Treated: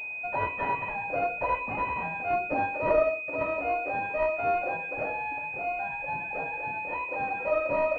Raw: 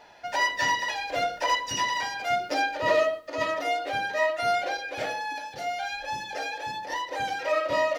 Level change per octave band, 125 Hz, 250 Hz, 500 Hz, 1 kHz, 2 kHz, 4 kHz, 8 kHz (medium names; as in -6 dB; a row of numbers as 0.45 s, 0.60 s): +4.0 dB, +1.5 dB, -0.5 dB, -2.0 dB, -2.5 dB, under -20 dB, under -30 dB